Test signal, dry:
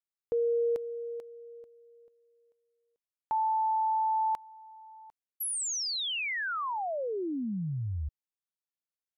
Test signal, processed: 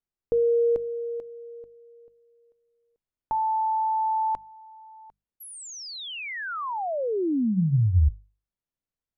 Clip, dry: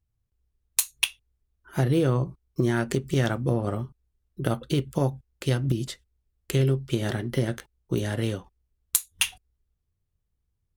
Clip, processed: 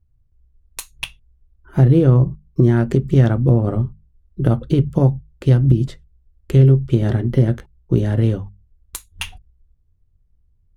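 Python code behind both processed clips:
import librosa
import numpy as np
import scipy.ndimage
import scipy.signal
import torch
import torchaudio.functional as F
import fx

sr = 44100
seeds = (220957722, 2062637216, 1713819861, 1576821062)

y = fx.tilt_eq(x, sr, slope=-3.5)
y = fx.hum_notches(y, sr, base_hz=50, count=4)
y = y * 10.0 ** (2.5 / 20.0)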